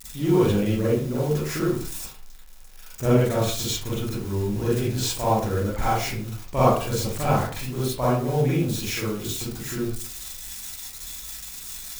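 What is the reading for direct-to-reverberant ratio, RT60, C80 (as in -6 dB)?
-8.5 dB, 0.45 s, 5.5 dB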